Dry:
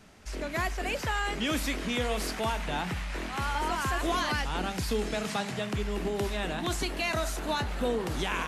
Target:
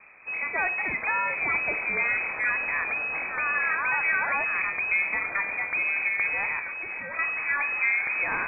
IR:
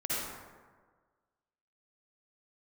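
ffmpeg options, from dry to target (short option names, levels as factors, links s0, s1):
-filter_complex "[0:a]asettb=1/sr,asplit=3[s0][s1][s2];[s0]atrim=end=6.594[s3];[s1]atrim=start=6.59:end=7.19,asetpts=PTS-STARTPTS,afade=t=in:d=0.004:c=qsin,afade=t=out:st=0.596:d=0.004:c=qsin,volume=63.1,asoftclip=hard,volume=0.0158[s4];[s2]atrim=start=7.186[s5];[s3][s4]acrossfade=d=0.004:c1=hsin:c2=qsin[s6];[s6][s5]acrossfade=d=0.004:c1=qsin:c2=hsin,asplit=2[s7][s8];[1:a]atrim=start_sample=2205,afade=t=out:st=0.2:d=0.01,atrim=end_sample=9261,asetrate=66150,aresample=44100[s9];[s8][s9]afir=irnorm=-1:irlink=0,volume=0.2[s10];[s7][s10]amix=inputs=2:normalize=0,lowpass=f=2200:t=q:w=0.5098,lowpass=f=2200:t=q:w=0.6013,lowpass=f=2200:t=q:w=0.9,lowpass=f=2200:t=q:w=2.563,afreqshift=-2600,volume=1.41"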